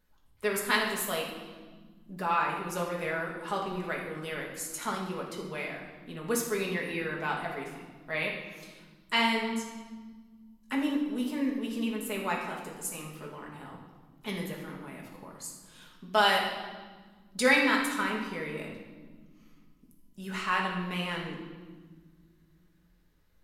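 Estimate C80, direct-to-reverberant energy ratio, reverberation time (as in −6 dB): 6.0 dB, −2.0 dB, 1.6 s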